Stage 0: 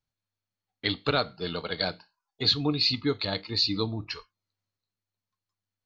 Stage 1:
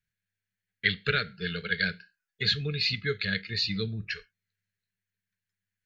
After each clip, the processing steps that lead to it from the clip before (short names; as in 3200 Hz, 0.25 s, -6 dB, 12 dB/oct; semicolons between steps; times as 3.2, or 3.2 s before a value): EQ curve 140 Hz 0 dB, 200 Hz +5 dB, 290 Hz -20 dB, 420 Hz -1 dB, 700 Hz -21 dB, 1000 Hz -29 dB, 1600 Hz +11 dB, 4600 Hz -5 dB, 6900 Hz -1 dB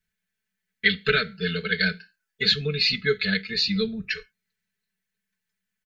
comb 4.6 ms, depth 98%; gain +2.5 dB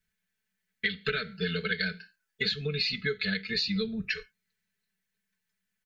compressor 12:1, threshold -26 dBFS, peak gain reduction 12.5 dB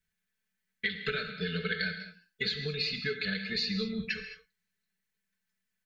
non-linear reverb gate 0.24 s flat, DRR 6.5 dB; gain -3 dB